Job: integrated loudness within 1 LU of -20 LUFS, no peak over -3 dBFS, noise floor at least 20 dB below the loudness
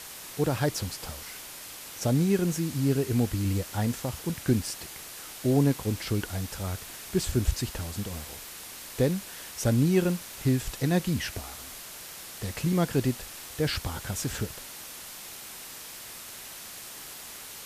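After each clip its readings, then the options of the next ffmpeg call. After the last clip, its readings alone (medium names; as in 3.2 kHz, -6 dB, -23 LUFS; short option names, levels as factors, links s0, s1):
noise floor -43 dBFS; noise floor target -50 dBFS; loudness -30.0 LUFS; peak level -11.0 dBFS; loudness target -20.0 LUFS
-> -af "afftdn=nr=7:nf=-43"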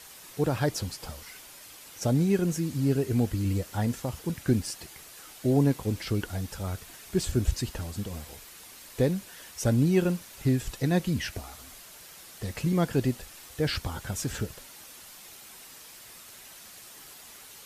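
noise floor -49 dBFS; loudness -29.0 LUFS; peak level -11.0 dBFS; loudness target -20.0 LUFS
-> -af "volume=2.82,alimiter=limit=0.708:level=0:latency=1"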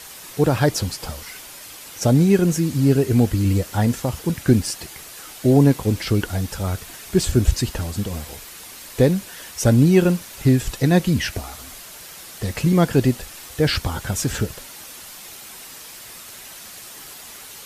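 loudness -20.0 LUFS; peak level -3.0 dBFS; noise floor -40 dBFS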